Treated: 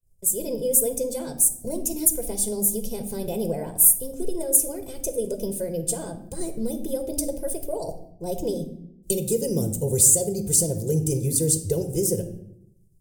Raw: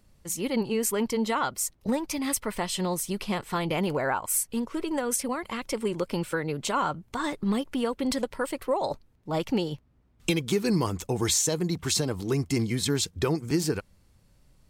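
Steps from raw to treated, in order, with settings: EQ curve 650 Hz 0 dB, 960 Hz -27 dB, 3700 Hz -9 dB, 7400 Hz +12 dB; expander -47 dBFS; reverb RT60 0.80 s, pre-delay 5 ms, DRR 7 dB; varispeed +13%; low shelf 180 Hz +7 dB; notch 600 Hz, Q 12; gain -2.5 dB

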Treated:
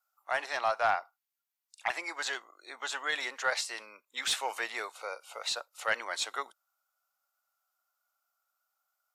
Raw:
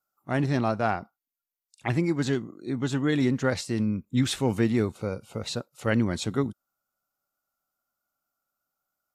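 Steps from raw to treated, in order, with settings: HPF 650 Hz 24 dB/oct; high shelf 6500 Hz +9 dB; overdrive pedal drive 12 dB, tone 3100 Hz, clips at -10 dBFS; gain -3.5 dB

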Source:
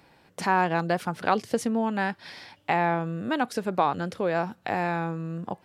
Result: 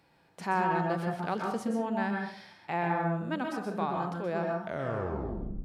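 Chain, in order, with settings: tape stop at the end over 1.10 s; plate-style reverb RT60 0.56 s, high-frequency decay 0.4×, pre-delay 0.115 s, DRR 2 dB; harmonic-percussive split percussive -7 dB; gain -6 dB

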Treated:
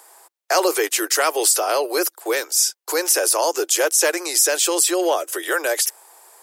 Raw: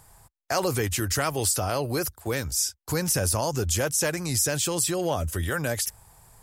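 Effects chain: steep high-pass 330 Hz 72 dB/oct; gain +8 dB

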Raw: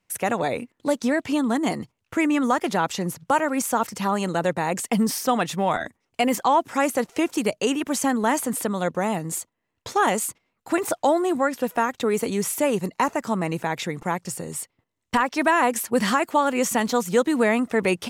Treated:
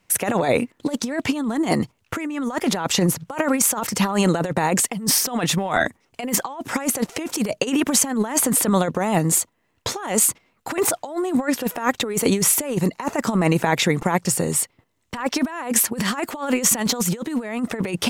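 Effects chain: negative-ratio compressor -26 dBFS, ratio -0.5; gain +6 dB

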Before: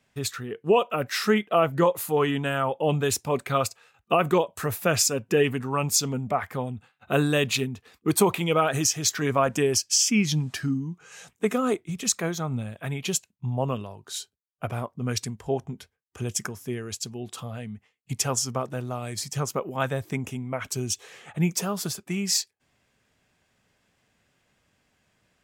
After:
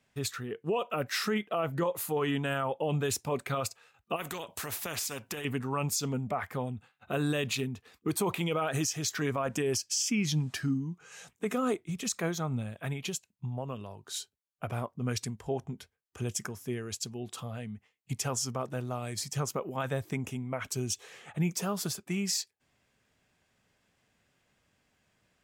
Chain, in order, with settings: 12.92–14.01 compressor 6:1, threshold -29 dBFS, peak gain reduction 9 dB; limiter -17.5 dBFS, peak gain reduction 8 dB; 4.16–5.45 spectral compressor 2:1; gain -3.5 dB

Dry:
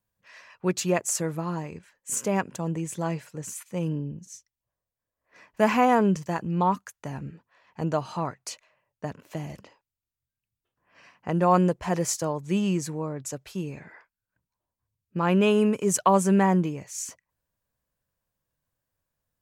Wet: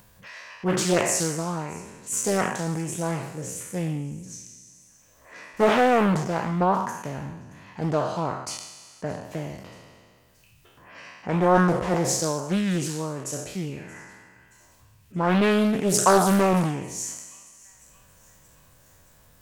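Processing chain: spectral trails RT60 0.91 s; upward compressor, threshold -35 dBFS; on a send: thin delay 0.626 s, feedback 54%, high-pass 2300 Hz, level -21.5 dB; on the sum: Doppler distortion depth 0.62 ms

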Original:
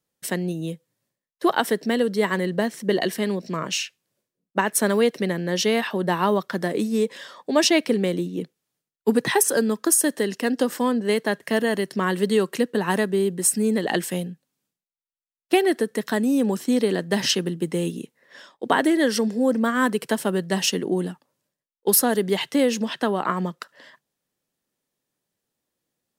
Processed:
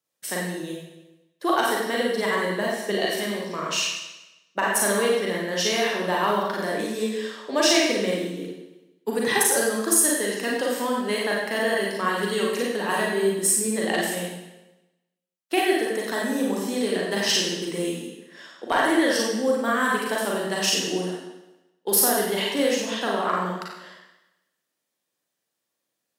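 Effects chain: HPF 500 Hz 6 dB/oct; hard clip -10.5 dBFS, distortion -27 dB; reverb RT60 1.0 s, pre-delay 36 ms, DRR -3.5 dB; gain -3 dB

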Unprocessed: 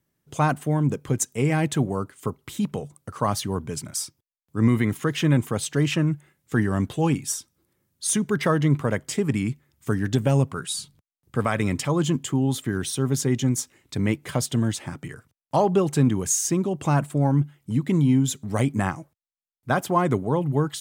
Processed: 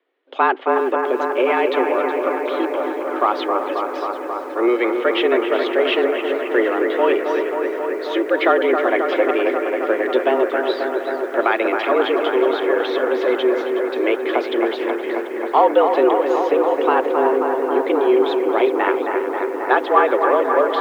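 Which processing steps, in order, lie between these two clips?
in parallel at -10 dB: hard clip -26.5 dBFS, distortion -5 dB; on the sum: analogue delay 0.268 s, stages 4096, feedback 84%, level -6 dB; mistuned SSB +120 Hz 240–3400 Hz; lo-fi delay 0.369 s, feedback 55%, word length 8-bit, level -12.5 dB; gain +6 dB

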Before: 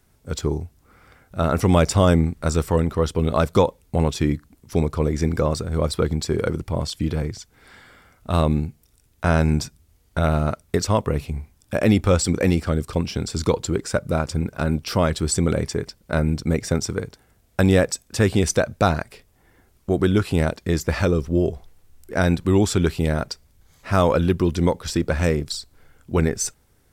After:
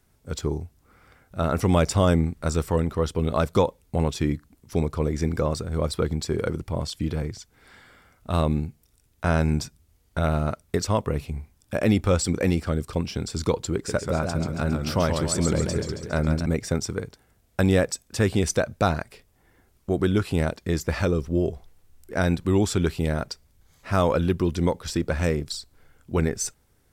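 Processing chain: 13.74–16.46 warbling echo 0.137 s, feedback 56%, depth 141 cents, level -5.5 dB; gain -3.5 dB

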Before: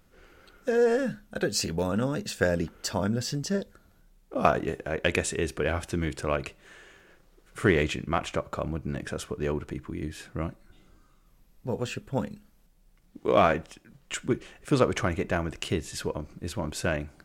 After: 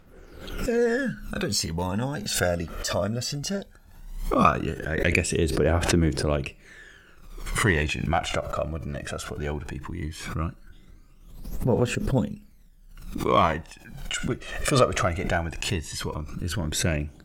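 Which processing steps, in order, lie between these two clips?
phaser 0.17 Hz, delay 1.7 ms, feedback 60%; backwards sustainer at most 62 dB/s

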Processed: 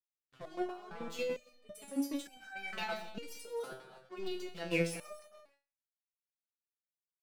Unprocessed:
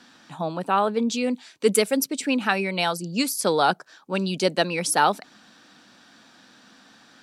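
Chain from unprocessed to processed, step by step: tone controls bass -9 dB, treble -10 dB; crossover distortion -38 dBFS; negative-ratio compressor -30 dBFS, ratio -1; 2.35–2.75 band shelf 1400 Hz +8 dB 1.1 oct; feedback echo 0.125 s, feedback 33%, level -16.5 dB; non-linear reverb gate 0.35 s flat, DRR 7.5 dB; rotary speaker horn 0.9 Hz, later 6.3 Hz, at 2.85; gate with hold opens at -45 dBFS; level quantiser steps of 10 dB; stepped resonator 2.2 Hz 130–780 Hz; gain +8.5 dB

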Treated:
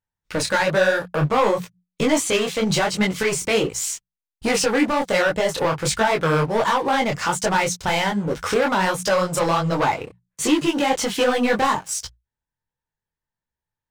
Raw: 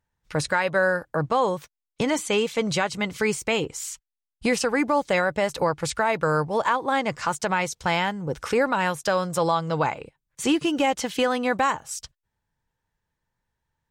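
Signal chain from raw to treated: sample leveller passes 3; notches 60/120/180 Hz; detuned doubles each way 46 cents

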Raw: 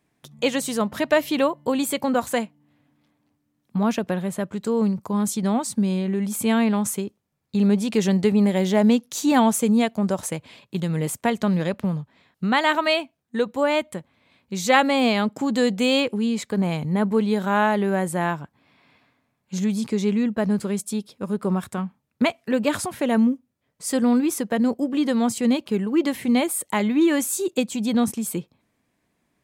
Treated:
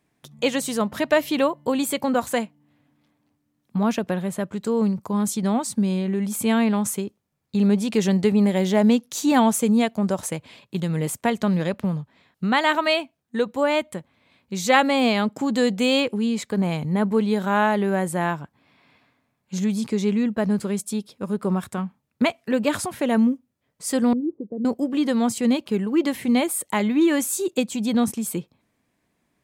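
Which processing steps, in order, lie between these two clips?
24.13–24.65 ladder low-pass 450 Hz, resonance 50%

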